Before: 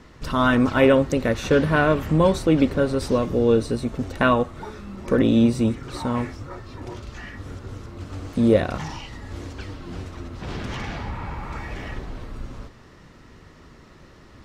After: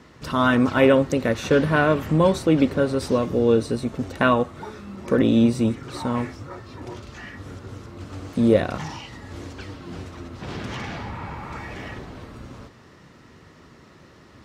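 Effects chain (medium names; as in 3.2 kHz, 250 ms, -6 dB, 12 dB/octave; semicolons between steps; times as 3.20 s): high-pass 85 Hz 12 dB/octave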